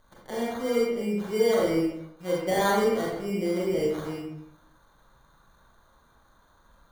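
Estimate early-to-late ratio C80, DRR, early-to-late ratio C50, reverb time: 4.0 dB, -4.5 dB, 0.5 dB, 0.80 s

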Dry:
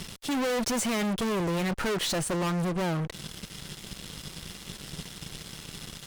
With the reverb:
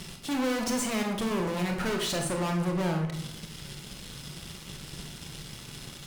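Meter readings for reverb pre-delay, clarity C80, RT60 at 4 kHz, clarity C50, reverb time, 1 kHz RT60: 24 ms, 10.0 dB, 0.45 s, 6.0 dB, 0.80 s, 0.70 s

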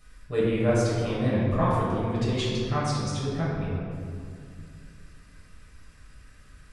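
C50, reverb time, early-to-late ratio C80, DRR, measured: -2.0 dB, 2.4 s, 0.5 dB, -8.0 dB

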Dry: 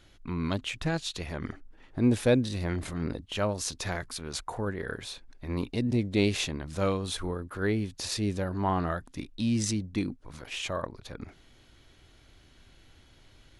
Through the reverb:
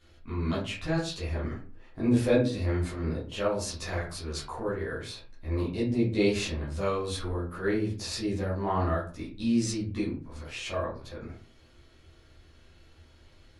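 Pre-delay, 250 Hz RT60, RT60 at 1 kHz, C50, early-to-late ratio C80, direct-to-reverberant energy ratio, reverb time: 9 ms, 0.50 s, 0.40 s, 6.0 dB, 11.5 dB, -9.0 dB, 0.40 s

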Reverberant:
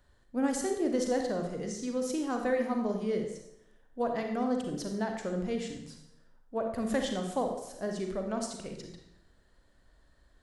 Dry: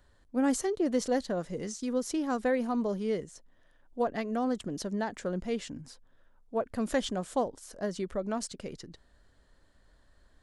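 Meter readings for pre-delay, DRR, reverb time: 35 ms, 3.0 dB, 0.85 s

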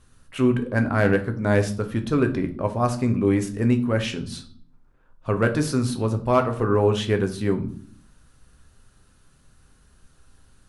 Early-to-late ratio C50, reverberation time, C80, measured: 13.0 dB, 0.55 s, 17.5 dB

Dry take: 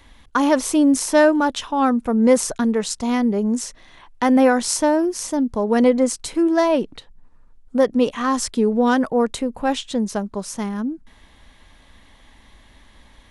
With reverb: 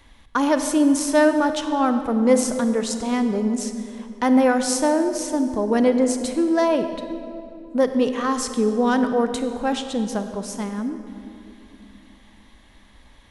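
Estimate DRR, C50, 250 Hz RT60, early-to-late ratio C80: 8.0 dB, 8.5 dB, 3.5 s, 9.0 dB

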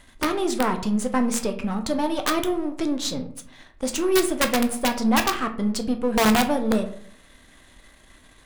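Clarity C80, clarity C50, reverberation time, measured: 15.5 dB, 12.0 dB, 0.60 s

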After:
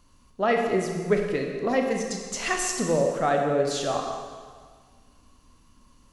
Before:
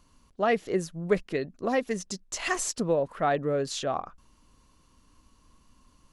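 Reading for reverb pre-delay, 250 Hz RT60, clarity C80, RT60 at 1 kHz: 18 ms, 1.7 s, 4.5 dB, 1.7 s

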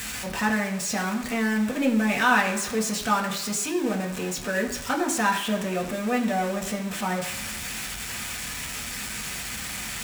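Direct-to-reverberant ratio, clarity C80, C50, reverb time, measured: 0.5 dB, 11.5 dB, 9.5 dB, 1.0 s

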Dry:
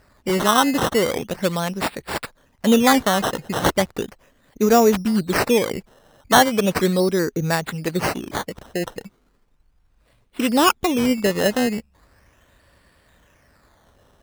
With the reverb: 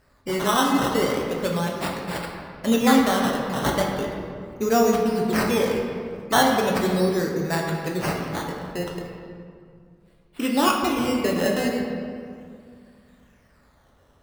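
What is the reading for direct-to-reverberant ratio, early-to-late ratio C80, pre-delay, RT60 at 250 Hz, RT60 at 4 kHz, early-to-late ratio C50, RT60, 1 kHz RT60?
-1.0 dB, 3.5 dB, 7 ms, 2.7 s, 1.3 s, 2.5 dB, 2.2 s, 2.1 s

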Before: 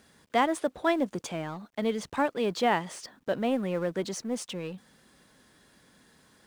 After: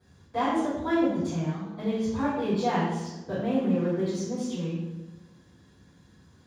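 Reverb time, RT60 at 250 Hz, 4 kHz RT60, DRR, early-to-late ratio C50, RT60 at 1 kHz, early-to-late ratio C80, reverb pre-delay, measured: 1.1 s, 1.3 s, 0.75 s, -15.0 dB, 0.0 dB, 0.95 s, 3.0 dB, 3 ms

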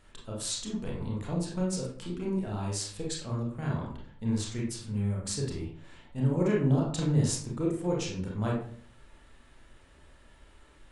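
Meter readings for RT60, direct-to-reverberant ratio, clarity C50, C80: 0.50 s, -3.5 dB, 3.5 dB, 8.0 dB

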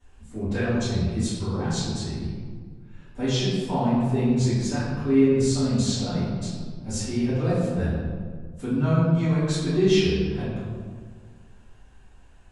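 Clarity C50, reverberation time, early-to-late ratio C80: -2.5 dB, 1.8 s, 0.5 dB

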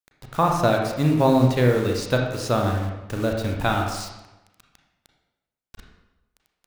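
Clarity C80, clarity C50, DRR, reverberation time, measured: 6.0 dB, 3.5 dB, 1.0 dB, 1.0 s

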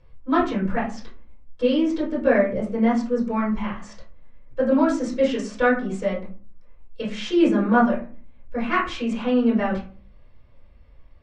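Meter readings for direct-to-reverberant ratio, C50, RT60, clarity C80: -8.0 dB, 7.0 dB, 0.40 s, 13.0 dB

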